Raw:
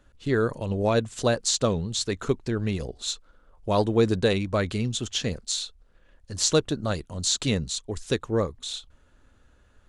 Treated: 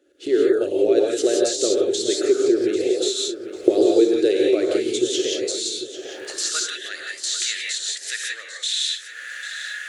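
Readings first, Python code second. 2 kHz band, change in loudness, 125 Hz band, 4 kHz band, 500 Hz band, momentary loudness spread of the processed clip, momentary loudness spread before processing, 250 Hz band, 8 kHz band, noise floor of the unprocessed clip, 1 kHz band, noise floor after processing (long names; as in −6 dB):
+5.5 dB, +5.0 dB, below −20 dB, +5.0 dB, +8.0 dB, 11 LU, 9 LU, +5.5 dB, +4.5 dB, −60 dBFS, −5.0 dB, −39 dBFS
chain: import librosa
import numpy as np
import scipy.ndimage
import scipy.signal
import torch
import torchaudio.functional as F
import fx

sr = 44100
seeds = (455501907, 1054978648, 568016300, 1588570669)

p1 = fx.recorder_agc(x, sr, target_db=-14.5, rise_db_per_s=48.0, max_gain_db=30)
p2 = fx.rev_gated(p1, sr, seeds[0], gate_ms=200, shape='rising', drr_db=-2.0)
p3 = fx.dynamic_eq(p2, sr, hz=270.0, q=2.0, threshold_db=-35.0, ratio=4.0, max_db=-6)
p4 = fx.fixed_phaser(p3, sr, hz=410.0, stages=4)
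p5 = fx.filter_sweep_highpass(p4, sr, from_hz=350.0, to_hz=1800.0, start_s=5.53, end_s=6.77, q=6.4)
p6 = p5 + fx.echo_feedback(p5, sr, ms=795, feedback_pct=33, wet_db=-13, dry=0)
y = F.gain(torch.from_numpy(p6), -3.0).numpy()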